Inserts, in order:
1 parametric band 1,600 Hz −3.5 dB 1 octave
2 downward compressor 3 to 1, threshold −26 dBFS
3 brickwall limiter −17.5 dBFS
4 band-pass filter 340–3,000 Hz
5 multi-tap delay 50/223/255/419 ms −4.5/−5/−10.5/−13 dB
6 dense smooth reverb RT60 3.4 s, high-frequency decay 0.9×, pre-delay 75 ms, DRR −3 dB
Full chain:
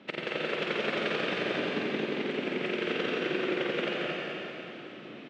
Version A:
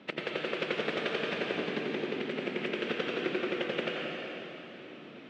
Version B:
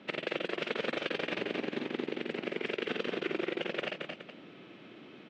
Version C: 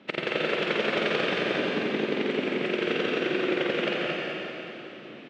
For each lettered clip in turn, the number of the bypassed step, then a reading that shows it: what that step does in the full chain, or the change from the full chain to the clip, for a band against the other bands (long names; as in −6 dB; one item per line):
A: 5, echo-to-direct ratio 6.5 dB to 3.0 dB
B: 6, echo-to-direct ratio 6.5 dB to −1.0 dB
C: 3, change in integrated loudness +4.0 LU